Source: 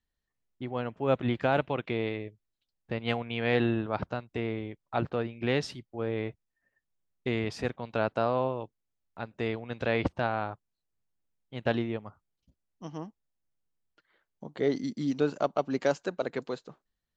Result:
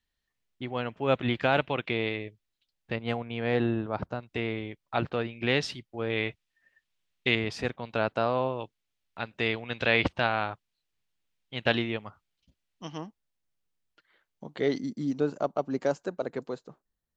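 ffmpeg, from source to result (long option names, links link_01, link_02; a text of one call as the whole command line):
ffmpeg -i in.wav -af "asetnsamples=nb_out_samples=441:pad=0,asendcmd='2.96 equalizer g -4;4.23 equalizer g 7;6.1 equalizer g 15;7.35 equalizer g 4.5;8.59 equalizer g 11.5;13.01 equalizer g 5;14.79 equalizer g -7',equalizer=frequency=3000:width_type=o:width=2:gain=7.5" out.wav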